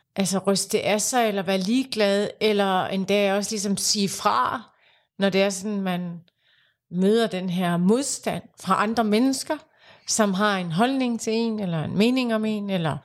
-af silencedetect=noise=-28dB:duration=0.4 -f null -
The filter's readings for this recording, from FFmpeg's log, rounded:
silence_start: 4.57
silence_end: 5.20 | silence_duration: 0.62
silence_start: 6.10
silence_end: 6.94 | silence_duration: 0.84
silence_start: 9.56
silence_end: 10.09 | silence_duration: 0.53